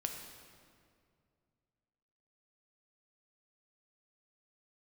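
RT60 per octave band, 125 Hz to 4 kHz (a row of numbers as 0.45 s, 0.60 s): 3.0 s, 2.6 s, 2.4 s, 2.1 s, 1.8 s, 1.5 s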